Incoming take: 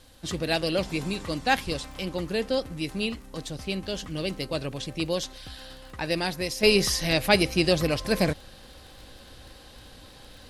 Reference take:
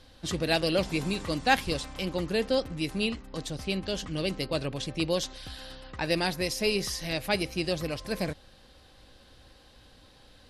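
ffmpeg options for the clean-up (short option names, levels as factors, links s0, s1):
-af "adeclick=t=4,agate=range=0.0891:threshold=0.01,asetnsamples=n=441:p=0,asendcmd='6.63 volume volume -7.5dB',volume=1"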